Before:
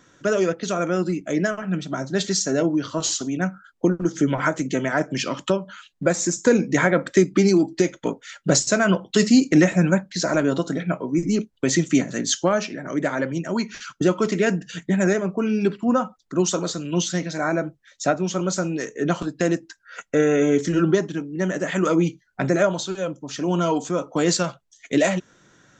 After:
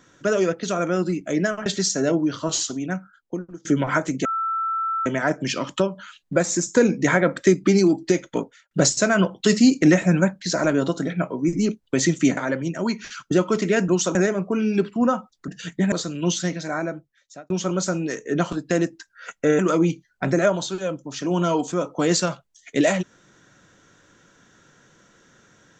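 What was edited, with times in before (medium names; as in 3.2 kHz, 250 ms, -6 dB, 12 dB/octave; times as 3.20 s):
1.66–2.17 s: delete
3.05–4.16 s: fade out, to -23 dB
4.76 s: add tone 1.33 kHz -21.5 dBFS 0.81 s
8.12–8.41 s: studio fade out
12.07–13.07 s: delete
14.58–15.02 s: swap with 16.35–16.62 s
17.13–18.20 s: fade out
20.29–21.76 s: delete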